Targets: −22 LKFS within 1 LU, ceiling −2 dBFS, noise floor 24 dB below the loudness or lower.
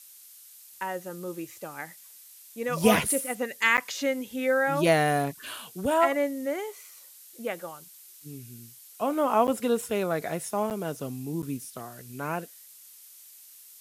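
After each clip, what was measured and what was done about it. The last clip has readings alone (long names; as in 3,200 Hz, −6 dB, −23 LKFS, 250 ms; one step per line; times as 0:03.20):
number of dropouts 4; longest dropout 8.7 ms; background noise floor −51 dBFS; target noise floor −52 dBFS; integrated loudness −27.5 LKFS; sample peak −6.5 dBFS; target loudness −22.0 LKFS
→ repair the gap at 0:03.77/0:09.47/0:10.70/0:11.42, 8.7 ms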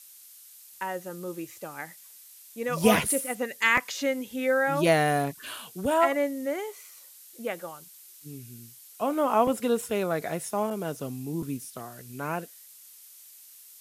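number of dropouts 0; background noise floor −51 dBFS; target noise floor −52 dBFS
→ broadband denoise 6 dB, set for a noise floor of −51 dBFS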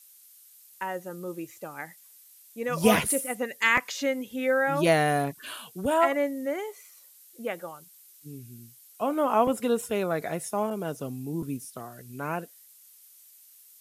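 background noise floor −55 dBFS; integrated loudness −27.5 LKFS; sample peak −6.5 dBFS; target loudness −22.0 LKFS
→ level +5.5 dB
brickwall limiter −2 dBFS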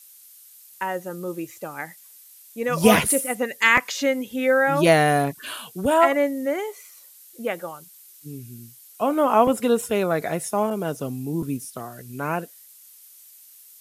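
integrated loudness −22.0 LKFS; sample peak −2.0 dBFS; background noise floor −49 dBFS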